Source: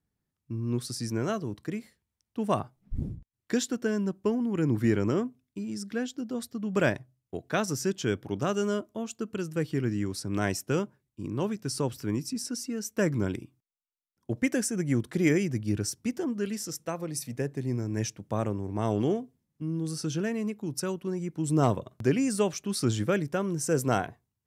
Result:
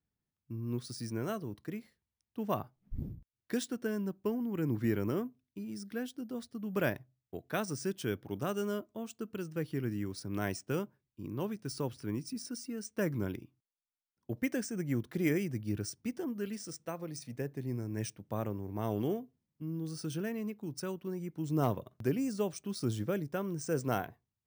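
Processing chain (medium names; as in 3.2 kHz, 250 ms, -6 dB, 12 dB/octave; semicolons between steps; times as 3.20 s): 22.08–23.34 s: dynamic bell 2 kHz, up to -6 dB, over -44 dBFS, Q 0.77; careless resampling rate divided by 3×, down filtered, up hold; trim -6.5 dB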